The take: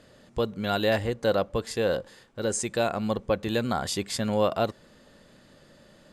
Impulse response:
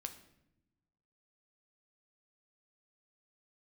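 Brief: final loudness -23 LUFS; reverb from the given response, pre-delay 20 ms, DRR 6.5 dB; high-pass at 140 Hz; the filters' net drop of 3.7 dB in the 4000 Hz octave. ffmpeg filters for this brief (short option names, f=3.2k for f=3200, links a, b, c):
-filter_complex "[0:a]highpass=140,equalizer=f=4k:t=o:g=-4.5,asplit=2[a][b];[1:a]atrim=start_sample=2205,adelay=20[c];[b][c]afir=irnorm=-1:irlink=0,volume=-3.5dB[d];[a][d]amix=inputs=2:normalize=0,volume=4.5dB"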